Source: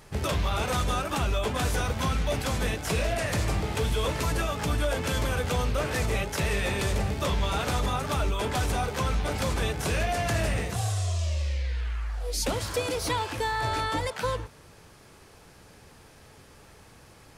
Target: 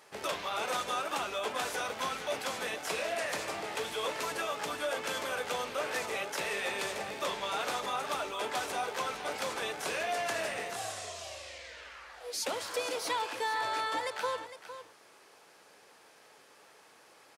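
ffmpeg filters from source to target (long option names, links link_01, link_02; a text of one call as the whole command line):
ffmpeg -i in.wav -af "highpass=460,highshelf=frequency=6900:gain=-4,aecho=1:1:458:0.251,volume=-3dB" out.wav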